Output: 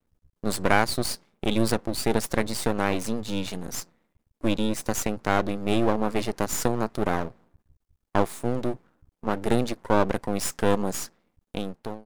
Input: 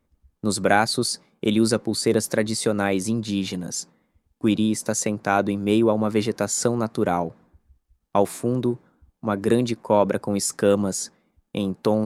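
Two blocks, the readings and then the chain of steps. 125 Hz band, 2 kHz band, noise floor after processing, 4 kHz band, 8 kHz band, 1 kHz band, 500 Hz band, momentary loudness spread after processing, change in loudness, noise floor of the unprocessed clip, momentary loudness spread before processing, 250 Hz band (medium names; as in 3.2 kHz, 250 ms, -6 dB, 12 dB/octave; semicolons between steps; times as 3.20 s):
-3.0 dB, -1.5 dB, -81 dBFS, -3.5 dB, -5.5 dB, -2.0 dB, -5.0 dB, 11 LU, -4.0 dB, -73 dBFS, 9 LU, -5.0 dB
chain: fade out at the end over 0.59 s; half-wave rectifier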